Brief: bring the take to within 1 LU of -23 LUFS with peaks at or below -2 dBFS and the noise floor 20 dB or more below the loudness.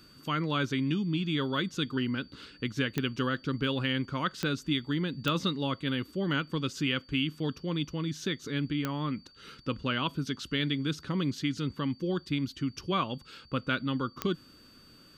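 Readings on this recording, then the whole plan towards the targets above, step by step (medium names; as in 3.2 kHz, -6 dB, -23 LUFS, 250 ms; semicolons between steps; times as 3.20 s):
clicks found 5; steady tone 4.6 kHz; tone level -57 dBFS; loudness -32.0 LUFS; peak level -14.0 dBFS; loudness target -23.0 LUFS
-> de-click; band-stop 4.6 kHz, Q 30; trim +9 dB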